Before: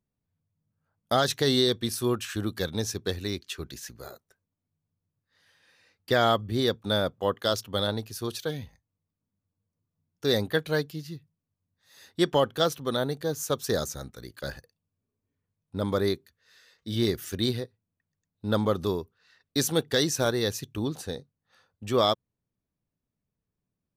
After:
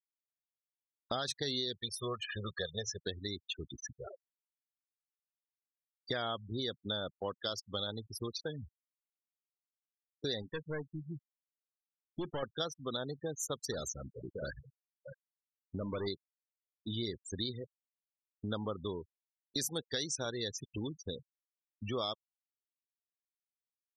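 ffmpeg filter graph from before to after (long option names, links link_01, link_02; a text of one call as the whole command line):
ffmpeg -i in.wav -filter_complex "[0:a]asettb=1/sr,asplit=3[link_01][link_02][link_03];[link_01]atrim=end=1.774[link_04];[link_02]atrim=start=1.77:end=3.01,asetpts=PTS-STARTPTS,afade=type=in:duration=0.004:curve=qsin,afade=type=out:start_time=1.236:duration=0.004:curve=qsin,bass=frequency=250:gain=-6,treble=frequency=4000:gain=-6,aecho=1:1:1.7:0.92,atrim=end_sample=54684[link_05];[link_03]atrim=start=3.006[link_06];[link_04][link_05]acrossfade=duration=0.004:curve1=hsin:curve2=qsin[link_07];[link_07][link_06]acrossfade=duration=0.004:curve1=qsin:curve2=hsin,asettb=1/sr,asplit=3[link_08][link_09][link_10];[link_08]atrim=end=10.424[link_11];[link_09]atrim=start=10.42:end=12.43,asetpts=PTS-STARTPTS,afade=type=in:duration=0.004:curve=qsin,afade=type=out:start_time=2.006:duration=0.004:curve=qsin,highshelf=frequency=2400:gain=-6,aeval=exprs='(tanh(17.8*val(0)+0.3)-tanh(0.3))/17.8':channel_layout=same[link_12];[link_10]atrim=start=12.426[link_13];[link_11][link_12]acrossfade=duration=0.004:curve1=hsin:curve2=qsin[link_14];[link_14][link_13]acrossfade=duration=0.004:curve1=qsin:curve2=hsin,asettb=1/sr,asplit=3[link_15][link_16][link_17];[link_15]atrim=end=13.724[link_18];[link_16]atrim=start=13.72:end=16.07,asetpts=PTS-STARTPTS,afade=type=in:duration=0.004:curve=qsin,afade=type=out:start_time=2.346:duration=0.004:curve=qsin,asoftclip=type=hard:threshold=-24dB,aecho=1:1:54|55|426|633:0.158|0.112|0.1|0.282,atrim=end_sample=103635[link_19];[link_17]atrim=start=16.066[link_20];[link_18][link_19]acrossfade=duration=0.004:curve1=hsin:curve2=qsin[link_21];[link_21][link_20]acrossfade=duration=0.004:curve1=qsin:curve2=hsin,afftfilt=real='re*gte(hypot(re,im),0.0316)':imag='im*gte(hypot(re,im),0.0316)':win_size=1024:overlap=0.75,highshelf=frequency=2300:gain=9.5,acompressor=threshold=-39dB:ratio=3" out.wav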